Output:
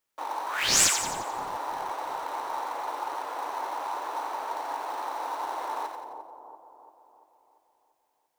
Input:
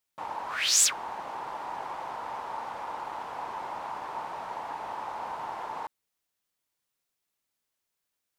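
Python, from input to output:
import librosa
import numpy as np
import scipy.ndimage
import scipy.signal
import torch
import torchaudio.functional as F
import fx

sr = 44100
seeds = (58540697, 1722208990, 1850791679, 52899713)

p1 = scipy.signal.sosfilt(scipy.signal.butter(12, 270.0, 'highpass', fs=sr, output='sos'), x)
p2 = fx.sample_hold(p1, sr, seeds[0], rate_hz=4900.0, jitter_pct=20)
p3 = p1 + (p2 * librosa.db_to_amplitude(-8.5))
y = fx.echo_split(p3, sr, split_hz=950.0, low_ms=342, high_ms=88, feedback_pct=52, wet_db=-6.0)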